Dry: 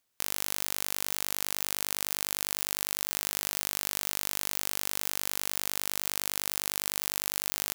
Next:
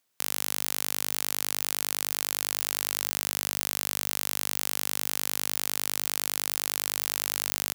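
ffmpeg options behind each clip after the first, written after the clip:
-af "highpass=110,volume=2.5dB"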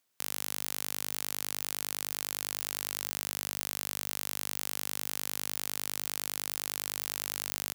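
-af "acontrast=26,volume=-7dB"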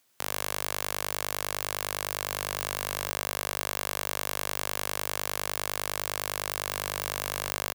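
-filter_complex "[0:a]acrossover=split=630[a][b];[b]asoftclip=type=tanh:threshold=-19dB[c];[a][c]amix=inputs=2:normalize=0,aecho=1:1:82:0.447,volume=8.5dB"

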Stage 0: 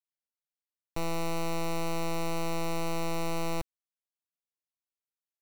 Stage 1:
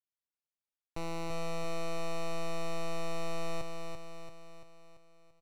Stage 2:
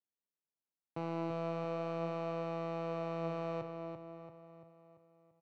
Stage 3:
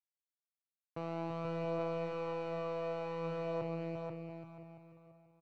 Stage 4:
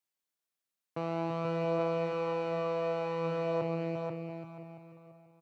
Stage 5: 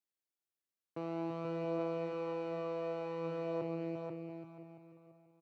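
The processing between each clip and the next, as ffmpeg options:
-af "adynamicsmooth=sensitivity=2:basefreq=5.7k,highshelf=f=6.2k:g=4.5,aecho=1:1:339|678|1017|1356|1695|2034|2373:0.562|0.298|0.158|0.0837|0.0444|0.0235|0.0125,volume=-5.5dB"
-af "highpass=f=120:w=0.5412,highpass=f=120:w=1.3066,adynamicsmooth=sensitivity=1.5:basefreq=1k,flanger=delay=9.5:depth=5.7:regen=82:speed=0.38:shape=sinusoidal,volume=6.5dB"
-af "aphaser=in_gain=1:out_gain=1:delay=1.9:decay=0.32:speed=0.55:type=triangular,agate=range=-33dB:threshold=-58dB:ratio=3:detection=peak,aecho=1:1:484|968|1452:0.631|0.133|0.0278,volume=-1.5dB"
-af "highpass=120,volume=6dB"
-af "equalizer=f=340:t=o:w=0.81:g=7.5,volume=-8.5dB"

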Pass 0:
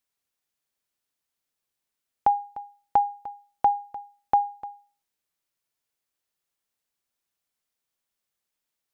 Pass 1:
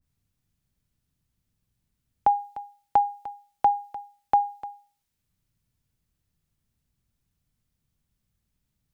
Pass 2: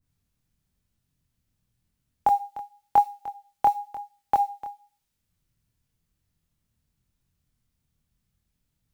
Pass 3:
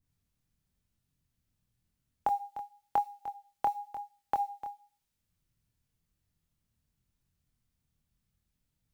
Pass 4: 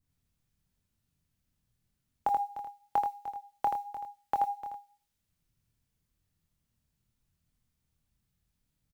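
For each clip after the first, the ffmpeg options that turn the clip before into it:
-filter_complex "[0:a]acrossover=split=170[a][b];[a]acompressor=mode=upward:threshold=-54dB:ratio=2.5[c];[c][b]amix=inputs=2:normalize=0,adynamicequalizer=threshold=0.0141:dfrequency=1700:dqfactor=0.7:tfrequency=1700:tqfactor=0.7:attack=5:release=100:ratio=0.375:range=4:mode=boostabove:tftype=highshelf"
-af "acrusher=bits=8:mode=log:mix=0:aa=0.000001,flanger=delay=22.5:depth=4.2:speed=0.96,volume=4dB"
-af "acompressor=threshold=-26dB:ratio=2,volume=-4dB"
-af "aecho=1:1:81:0.562"

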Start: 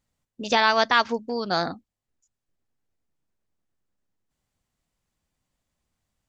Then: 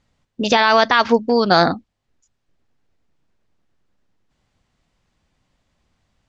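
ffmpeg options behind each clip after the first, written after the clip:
-af "lowpass=5k,alimiter=level_in=13.5dB:limit=-1dB:release=50:level=0:latency=1,volume=-1dB"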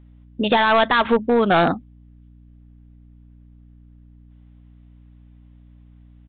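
-af "aresample=8000,asoftclip=type=hard:threshold=-10.5dB,aresample=44100,aeval=exprs='val(0)+0.00501*(sin(2*PI*60*n/s)+sin(2*PI*2*60*n/s)/2+sin(2*PI*3*60*n/s)/3+sin(2*PI*4*60*n/s)/4+sin(2*PI*5*60*n/s)/5)':c=same"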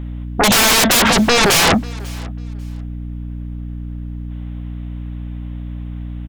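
-af "aeval=exprs='0.447*sin(PI/2*8.91*val(0)/0.447)':c=same,aecho=1:1:544|1088:0.0708|0.0142,volume=-2dB"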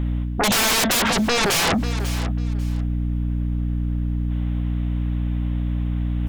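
-af "areverse,acompressor=mode=upward:threshold=-16dB:ratio=2.5,areverse,alimiter=limit=-15.5dB:level=0:latency=1:release=37"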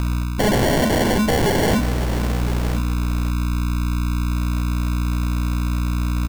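-af "acrusher=samples=35:mix=1:aa=0.000001,aecho=1:1:1013:0.237,volume=2dB"

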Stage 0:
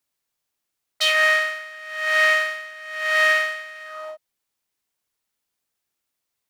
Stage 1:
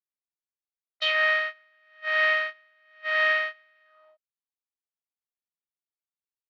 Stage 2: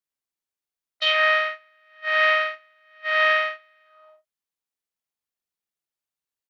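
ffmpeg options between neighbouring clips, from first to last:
-af "agate=range=-19dB:threshold=-24dB:ratio=16:detection=peak,lowpass=f=4k:w=0.5412,lowpass=f=4k:w=1.3066,volume=-5dB"
-af "bandreject=f=50:t=h:w=6,bandreject=f=100:t=h:w=6,aecho=1:1:47|79:0.562|0.141,volume=3dB"

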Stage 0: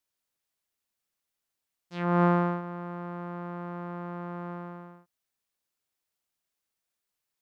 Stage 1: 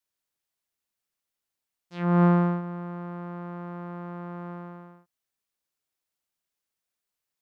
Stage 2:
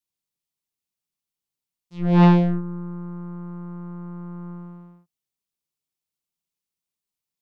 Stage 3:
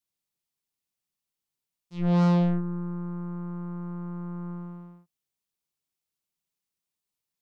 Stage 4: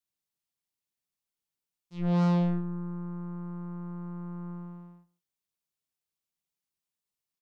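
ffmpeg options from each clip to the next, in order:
-af "adynamicequalizer=threshold=0.0112:dfrequency=190:dqfactor=0.98:tfrequency=190:tqfactor=0.98:attack=5:release=100:ratio=0.375:range=3.5:mode=boostabove:tftype=bell,volume=-1.5dB"
-af "equalizer=f=160:t=o:w=0.67:g=7,equalizer=f=630:t=o:w=0.67:g=-6,equalizer=f=1.6k:t=o:w=0.67:g=-9,aeval=exprs='0.398*(cos(1*acos(clip(val(0)/0.398,-1,1)))-cos(1*PI/2))+0.0282*(cos(3*acos(clip(val(0)/0.398,-1,1)))-cos(3*PI/2))+0.112*(cos(6*acos(clip(val(0)/0.398,-1,1)))-cos(6*PI/2))+0.112*(cos(8*acos(clip(val(0)/0.398,-1,1)))-cos(8*PI/2))':c=same"
-af "asoftclip=type=tanh:threshold=-18dB"
-af "aecho=1:1:150:0.0794,volume=-3.5dB"

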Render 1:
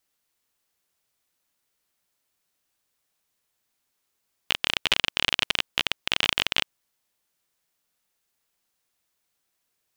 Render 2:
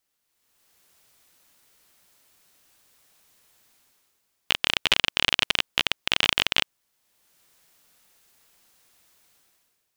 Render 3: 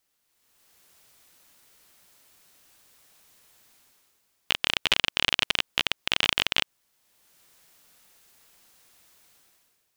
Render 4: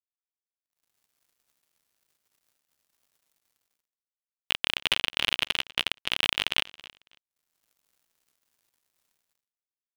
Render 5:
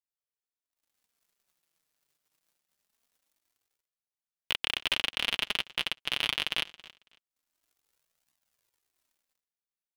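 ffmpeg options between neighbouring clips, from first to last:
-af "dynaudnorm=f=130:g=9:m=16dB,volume=-1dB"
-af "alimiter=limit=-6dB:level=0:latency=1:release=95,volume=2.5dB"
-af "acrusher=bits=7:mix=0:aa=0.5,aecho=1:1:275|550:0.075|0.015,asoftclip=type=tanh:threshold=-6dB"
-af "flanger=delay=1:depth=6.1:regen=-20:speed=0.24:shape=triangular"

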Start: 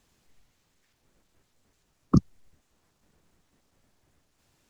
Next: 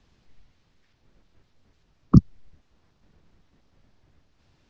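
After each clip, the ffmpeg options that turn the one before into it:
-filter_complex "[0:a]acrossover=split=340|3000[a][b][c];[b]acompressor=threshold=-31dB:ratio=6[d];[a][d][c]amix=inputs=3:normalize=0,lowpass=f=5.4k:w=0.5412,lowpass=f=5.4k:w=1.3066,lowshelf=f=190:g=7.5,volume=2.5dB"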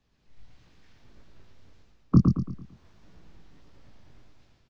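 -filter_complex "[0:a]flanger=delay=16:depth=7.3:speed=1.6,dynaudnorm=f=110:g=7:m=14dB,asplit=2[a][b];[b]aecho=0:1:112|224|336|448|560:0.631|0.252|0.101|0.0404|0.0162[c];[a][c]amix=inputs=2:normalize=0,volume=-6dB"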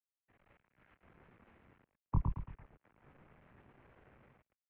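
-af "acrusher=bits=7:mix=0:aa=0.5,highpass=f=230:t=q:w=0.5412,highpass=f=230:t=q:w=1.307,lowpass=f=2.6k:t=q:w=0.5176,lowpass=f=2.6k:t=q:w=0.7071,lowpass=f=2.6k:t=q:w=1.932,afreqshift=-170,volume=-5.5dB"

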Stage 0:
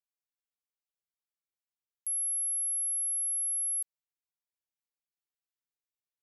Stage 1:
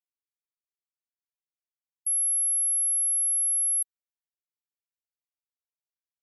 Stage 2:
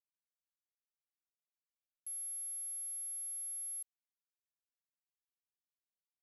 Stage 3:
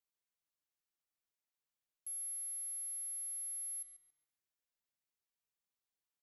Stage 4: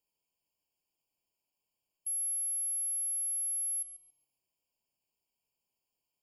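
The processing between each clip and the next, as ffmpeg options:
-af "afftfilt=real='re*gte(hypot(re,im),0.01)':imag='im*gte(hypot(re,im),0.01)':win_size=1024:overlap=0.75,volume=6.5dB"
-af "alimiter=level_in=8.5dB:limit=-24dB:level=0:latency=1,volume=-8.5dB,bass=f=250:g=12,treble=f=4k:g=-10,acrusher=bits=9:mix=0:aa=0.000001,volume=3dB"
-filter_complex "[0:a]asplit=2[a][b];[b]adelay=139,lowpass=f=4.5k:p=1,volume=-6.5dB,asplit=2[c][d];[d]adelay=139,lowpass=f=4.5k:p=1,volume=0.45,asplit=2[e][f];[f]adelay=139,lowpass=f=4.5k:p=1,volume=0.45,asplit=2[g][h];[h]adelay=139,lowpass=f=4.5k:p=1,volume=0.45,asplit=2[i][j];[j]adelay=139,lowpass=f=4.5k:p=1,volume=0.45[k];[a][c][e][g][i][k]amix=inputs=6:normalize=0"
-af "afftfilt=real='re*eq(mod(floor(b*sr/1024/1100),2),0)':imag='im*eq(mod(floor(b*sr/1024/1100),2),0)':win_size=1024:overlap=0.75,volume=8.5dB"

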